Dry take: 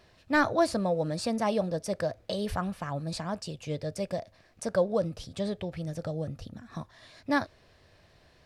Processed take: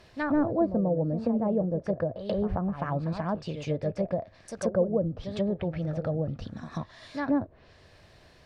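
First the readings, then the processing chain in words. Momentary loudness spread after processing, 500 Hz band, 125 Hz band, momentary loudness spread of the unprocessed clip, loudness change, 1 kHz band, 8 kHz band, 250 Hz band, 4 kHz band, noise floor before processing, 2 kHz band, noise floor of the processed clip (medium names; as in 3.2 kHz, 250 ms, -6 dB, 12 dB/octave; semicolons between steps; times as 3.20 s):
11 LU, +1.5 dB, +4.5 dB, 15 LU, +1.5 dB, -3.0 dB, -8.0 dB, +4.0 dB, -8.0 dB, -61 dBFS, -6.5 dB, -57 dBFS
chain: reverse echo 136 ms -10 dB; low-pass that closes with the level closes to 480 Hz, closed at -26 dBFS; trim +4 dB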